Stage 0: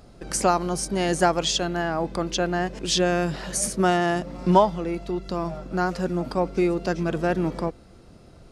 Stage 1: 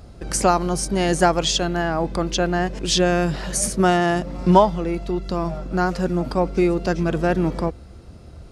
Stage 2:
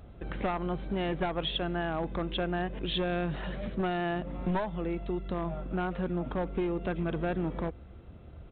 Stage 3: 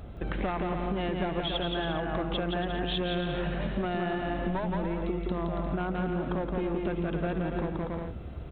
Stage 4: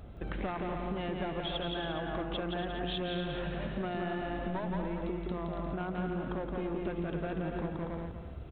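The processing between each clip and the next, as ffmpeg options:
-af "equalizer=f=69:w=1.3:g=11.5,volume=3dB"
-af "aresample=8000,aeval=exprs='clip(val(0),-1,0.168)':c=same,aresample=44100,acompressor=threshold=-21dB:ratio=4,volume=-7dB"
-af "aecho=1:1:170|280.5|352.3|399|429.4:0.631|0.398|0.251|0.158|0.1,acompressor=threshold=-34dB:ratio=6,volume=6.5dB"
-af "aecho=1:1:242:0.335,volume=-5dB"

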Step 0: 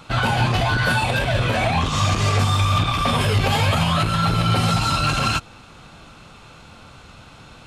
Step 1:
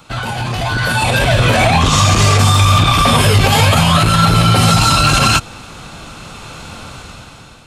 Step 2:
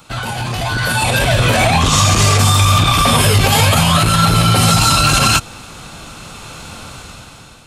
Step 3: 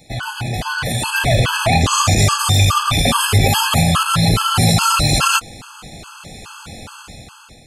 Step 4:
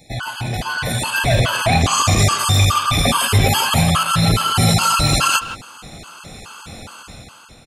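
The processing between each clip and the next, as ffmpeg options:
-filter_complex "[0:a]acrossover=split=190|5600[a][b][c];[c]acontrast=53[d];[a][b][d]amix=inputs=3:normalize=0,alimiter=limit=-12.5dB:level=0:latency=1:release=48,dynaudnorm=f=280:g=7:m=14.5dB"
-af "highshelf=f=7.3k:g=8,volume=-1.5dB"
-af "afftfilt=real='re*gt(sin(2*PI*2.4*pts/sr)*(1-2*mod(floor(b*sr/1024/850),2)),0)':imag='im*gt(sin(2*PI*2.4*pts/sr)*(1-2*mod(floor(b*sr/1024/850),2)),0)':win_size=1024:overlap=0.75"
-filter_complex "[0:a]asplit=2[a][b];[b]adelay=160,highpass=300,lowpass=3.4k,asoftclip=type=hard:threshold=-10.5dB,volume=-11dB[c];[a][c]amix=inputs=2:normalize=0,volume=-1dB"

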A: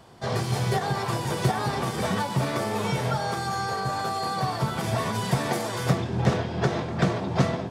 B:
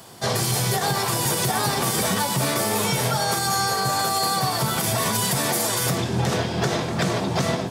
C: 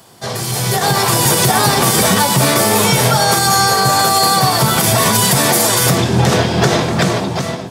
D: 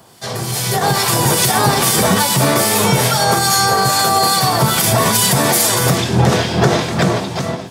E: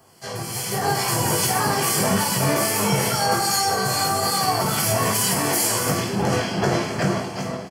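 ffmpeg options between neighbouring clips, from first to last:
-af "highpass=88,aemphasis=mode=production:type=75fm,alimiter=limit=-18dB:level=0:latency=1:release=79,volume=5.5dB"
-af "dynaudnorm=f=110:g=13:m=12.5dB"
-filter_complex "[0:a]acrossover=split=1600[a][b];[a]aeval=exprs='val(0)*(1-0.5/2+0.5/2*cos(2*PI*2.4*n/s))':c=same[c];[b]aeval=exprs='val(0)*(1-0.5/2-0.5/2*cos(2*PI*2.4*n/s))':c=same[d];[c][d]amix=inputs=2:normalize=0,volume=1dB"
-af "flanger=delay=2.5:depth=9:regen=-46:speed=1.1:shape=sinusoidal,asuperstop=centerf=3700:order=4:qfactor=5.3,aecho=1:1:20|52|103.2|185.1|316.2:0.631|0.398|0.251|0.158|0.1,volume=-5dB"

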